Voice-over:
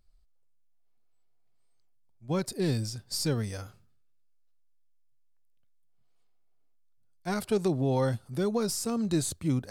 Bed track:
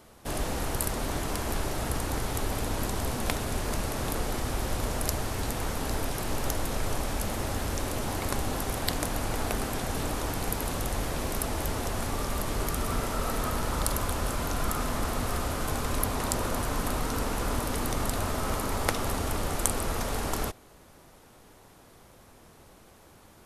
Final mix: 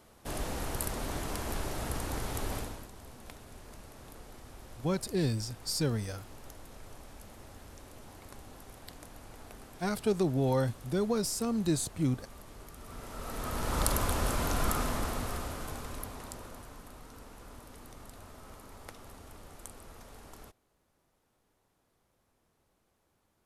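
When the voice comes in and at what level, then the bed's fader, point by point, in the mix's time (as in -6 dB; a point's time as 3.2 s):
2.55 s, -1.5 dB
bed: 2.57 s -5 dB
2.89 s -19.5 dB
12.76 s -19.5 dB
13.81 s -0.5 dB
14.71 s -0.5 dB
16.87 s -20.5 dB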